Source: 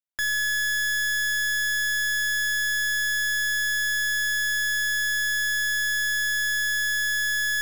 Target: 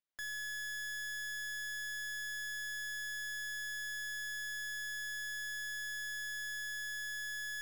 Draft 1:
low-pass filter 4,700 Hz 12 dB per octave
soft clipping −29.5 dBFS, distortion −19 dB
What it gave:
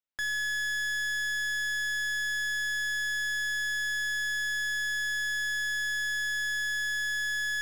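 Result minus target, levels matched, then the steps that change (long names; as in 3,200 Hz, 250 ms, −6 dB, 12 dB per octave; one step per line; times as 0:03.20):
soft clipping: distortion −8 dB
change: soft clipping −41 dBFS, distortion −11 dB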